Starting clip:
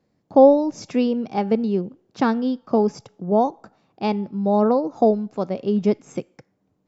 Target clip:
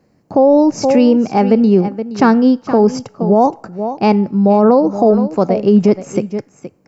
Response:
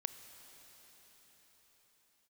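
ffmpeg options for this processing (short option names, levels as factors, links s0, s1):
-af "equalizer=f=3500:w=6:g=-14,aecho=1:1:471:0.188,alimiter=level_in=4.47:limit=0.891:release=50:level=0:latency=1,volume=0.891"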